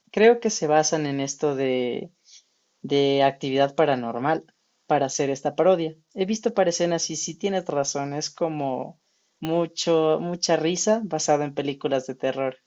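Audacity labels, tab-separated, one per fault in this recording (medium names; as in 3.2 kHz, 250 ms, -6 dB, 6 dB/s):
9.450000	9.450000	pop -14 dBFS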